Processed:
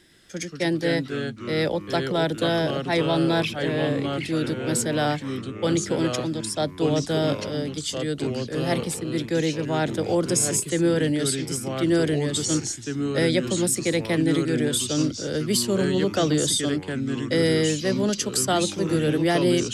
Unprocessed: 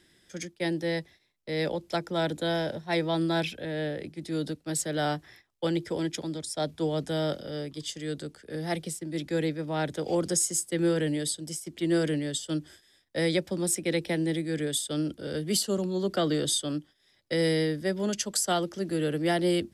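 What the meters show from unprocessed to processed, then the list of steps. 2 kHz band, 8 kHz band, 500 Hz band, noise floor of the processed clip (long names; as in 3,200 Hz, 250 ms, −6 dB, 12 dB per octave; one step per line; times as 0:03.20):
+6.0 dB, +5.0 dB, +5.5 dB, −38 dBFS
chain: in parallel at −0.5 dB: brickwall limiter −21.5 dBFS, peak gain reduction 7 dB
on the sum: delay with pitch and tempo change per echo 119 ms, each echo −3 semitones, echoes 3, each echo −6 dB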